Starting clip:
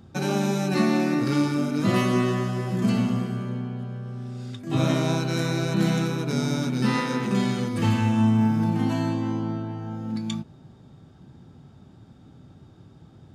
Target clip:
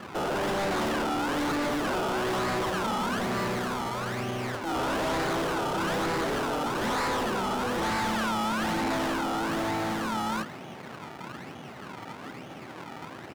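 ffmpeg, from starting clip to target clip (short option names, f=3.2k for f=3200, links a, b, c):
-filter_complex "[0:a]highshelf=f=10k:g=-10,bandreject=f=50:t=h:w=6,bandreject=f=100:t=h:w=6,bandreject=f=150:t=h:w=6,bandreject=f=200:t=h:w=6,bandreject=f=250:t=h:w=6,bandreject=f=300:t=h:w=6,bandreject=f=350:t=h:w=6,bandreject=f=400:t=h:w=6,bandreject=f=450:t=h:w=6,bandreject=f=500:t=h:w=6,asplit=2[a][b];[b]asetrate=37084,aresample=44100,atempo=1.18921,volume=-9dB[c];[a][c]amix=inputs=2:normalize=0,acrusher=samples=28:mix=1:aa=0.000001:lfo=1:lforange=28:lforate=1.1,lowshelf=f=190:g=-11.5,asplit=2[d][e];[e]highpass=f=720:p=1,volume=28dB,asoftclip=type=tanh:threshold=-9.5dB[f];[d][f]amix=inputs=2:normalize=0,lowpass=f=1.4k:p=1,volume=-6dB,asoftclip=type=hard:threshold=-27dB"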